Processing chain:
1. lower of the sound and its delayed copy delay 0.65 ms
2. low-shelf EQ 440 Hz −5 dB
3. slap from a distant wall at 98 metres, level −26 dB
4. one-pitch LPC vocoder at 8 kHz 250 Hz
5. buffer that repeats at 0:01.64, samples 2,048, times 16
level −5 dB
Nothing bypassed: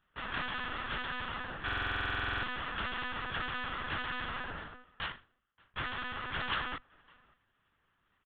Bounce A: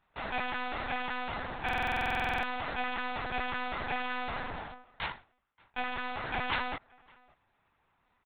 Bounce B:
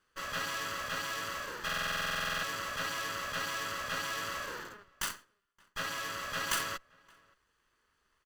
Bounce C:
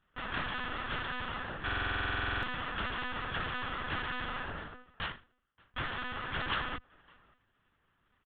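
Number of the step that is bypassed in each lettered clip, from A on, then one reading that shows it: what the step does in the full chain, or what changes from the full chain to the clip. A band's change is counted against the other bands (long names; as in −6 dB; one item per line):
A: 1, 4 kHz band −5.0 dB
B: 4, 125 Hz band −5.5 dB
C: 2, 4 kHz band −2.5 dB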